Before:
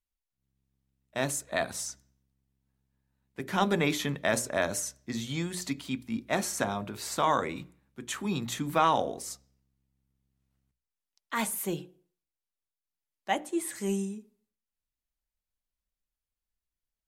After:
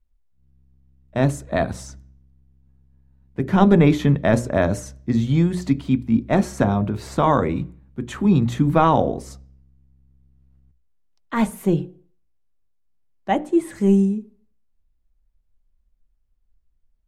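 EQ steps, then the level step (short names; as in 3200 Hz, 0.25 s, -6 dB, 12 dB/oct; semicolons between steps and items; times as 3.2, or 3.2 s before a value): tilt -4 dB/oct; +6.5 dB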